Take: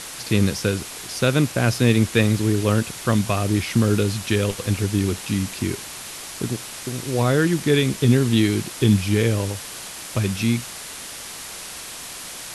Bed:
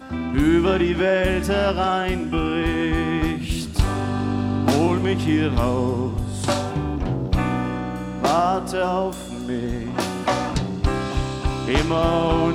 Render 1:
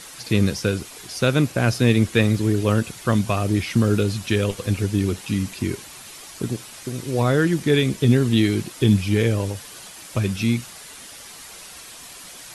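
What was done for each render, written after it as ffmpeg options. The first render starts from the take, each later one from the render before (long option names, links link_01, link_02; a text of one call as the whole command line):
ffmpeg -i in.wav -af "afftdn=noise_reduction=8:noise_floor=-36" out.wav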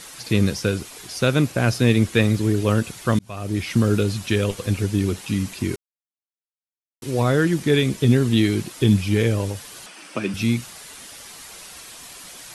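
ffmpeg -i in.wav -filter_complex "[0:a]asettb=1/sr,asplit=3[link_01][link_02][link_03];[link_01]atrim=end=9.864[link_04];[link_02]atrim=start=9.86:end=10.34,asetpts=PTS-STARTPTS,afade=type=in:duration=0.004:curve=qsin,afade=type=out:start_time=0.476:duration=0.004:curve=qsin,highpass=frequency=180:width=0.5412,highpass=frequency=180:width=1.3066,equalizer=frequency=300:width_type=q:width=4:gain=5,equalizer=frequency=1400:width_type=q:width=4:gain=4,equalizer=frequency=2600:width_type=q:width=4:gain=5,equalizer=frequency=3900:width_type=q:width=4:gain=-5,equalizer=frequency=7000:width_type=q:width=4:gain=-9,lowpass=frequency=8900:width=0.5412,lowpass=frequency=8900:width=1.3066[link_05];[link_03]atrim=start=10.336[link_06];[link_04][link_05]acrossfade=duration=0.004:curve1=hsin:curve2=qsin[link_07];[link_07][link_06]acrossfade=duration=0.004:curve1=qsin:curve2=hsin,asplit=4[link_08][link_09][link_10][link_11];[link_08]atrim=end=3.19,asetpts=PTS-STARTPTS,afade=type=out:start_time=3.186:duration=0.004:curve=hsin[link_12];[link_09]atrim=start=3.19:end=5.76,asetpts=PTS-STARTPTS,afade=type=in:duration=0.53,afade=type=out:start_time=2.566:duration=0.004:curve=hsin[link_13];[link_10]atrim=start=5.76:end=7.02,asetpts=PTS-STARTPTS,volume=0[link_14];[link_11]atrim=start=7.02,asetpts=PTS-STARTPTS,afade=type=in:duration=0.004:curve=hsin[link_15];[link_12][link_13][link_14][link_15]concat=n=4:v=0:a=1" out.wav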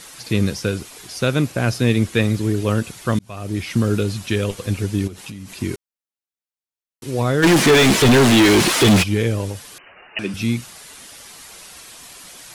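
ffmpeg -i in.wav -filter_complex "[0:a]asettb=1/sr,asplit=3[link_01][link_02][link_03];[link_01]atrim=end=5.074[link_04];[link_02]atrim=start=5.07:end=5.55,asetpts=PTS-STARTPTS,afade=type=in:duration=0.004:curve=qsin,afade=type=out:start_time=0.476:duration=0.004:curve=qsin,acompressor=threshold=-29dB:ratio=16:attack=3.2:release=140:knee=1:detection=peak[link_05];[link_03]atrim=start=5.546[link_06];[link_04][link_05]acrossfade=duration=0.004:curve1=hsin:curve2=qsin[link_07];[link_07][link_06]acrossfade=duration=0.004:curve1=qsin:curve2=hsin,asplit=3[link_08][link_09][link_10];[link_08]afade=type=out:start_time=7.42:duration=0.02[link_11];[link_09]asplit=2[link_12][link_13];[link_13]highpass=frequency=720:poles=1,volume=37dB,asoftclip=type=tanh:threshold=-5dB[link_14];[link_12][link_14]amix=inputs=2:normalize=0,lowpass=frequency=3500:poles=1,volume=-6dB,afade=type=in:start_time=7.42:duration=0.02,afade=type=out:start_time=9.02:duration=0.02[link_15];[link_10]afade=type=in:start_time=9.02:duration=0.02[link_16];[link_11][link_15][link_16]amix=inputs=3:normalize=0,asettb=1/sr,asplit=3[link_17][link_18][link_19];[link_17]atrim=end=9.784[link_20];[link_18]atrim=start=9.78:end=10.19,asetpts=PTS-STARTPTS,afade=type=in:duration=0.004:curve=qsin,afade=type=out:start_time=0.406:duration=0.004:curve=qsin,lowpass=frequency=2600:width_type=q:width=0.5098,lowpass=frequency=2600:width_type=q:width=0.6013,lowpass=frequency=2600:width_type=q:width=0.9,lowpass=frequency=2600:width_type=q:width=2.563,afreqshift=-3100[link_21];[link_19]atrim=start=10.186[link_22];[link_20][link_21]acrossfade=duration=0.004:curve1=hsin:curve2=qsin[link_23];[link_23][link_22]acrossfade=duration=0.004:curve1=qsin:curve2=hsin" out.wav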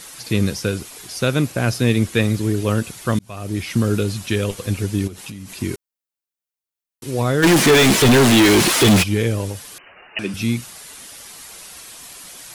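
ffmpeg -i in.wav -af "highshelf=frequency=10000:gain=6.5" out.wav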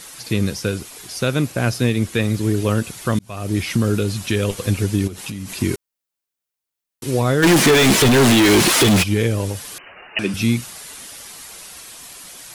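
ffmpeg -i in.wav -af "dynaudnorm=framelen=410:gausssize=11:maxgain=11.5dB,alimiter=limit=-7.5dB:level=0:latency=1:release=422" out.wav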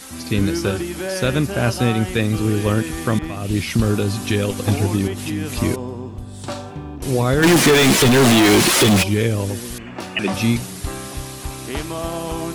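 ffmpeg -i in.wav -i bed.wav -filter_complex "[1:a]volume=-7dB[link_01];[0:a][link_01]amix=inputs=2:normalize=0" out.wav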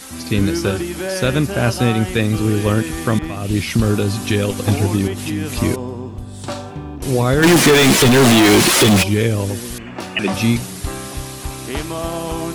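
ffmpeg -i in.wav -af "volume=2dB,alimiter=limit=-3dB:level=0:latency=1" out.wav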